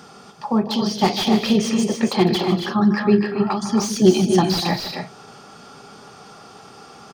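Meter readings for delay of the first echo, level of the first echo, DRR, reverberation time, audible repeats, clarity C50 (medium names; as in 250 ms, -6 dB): 153 ms, -12.5 dB, no reverb, no reverb, 4, no reverb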